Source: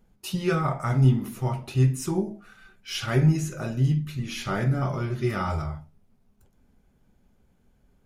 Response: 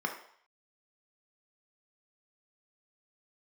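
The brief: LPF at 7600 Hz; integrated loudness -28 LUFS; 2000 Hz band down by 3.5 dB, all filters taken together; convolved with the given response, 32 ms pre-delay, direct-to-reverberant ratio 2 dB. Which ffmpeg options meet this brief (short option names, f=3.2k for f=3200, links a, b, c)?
-filter_complex "[0:a]lowpass=7.6k,equalizer=f=2k:t=o:g=-5,asplit=2[a][b];[1:a]atrim=start_sample=2205,adelay=32[c];[b][c]afir=irnorm=-1:irlink=0,volume=-8.5dB[d];[a][d]amix=inputs=2:normalize=0,volume=-3.5dB"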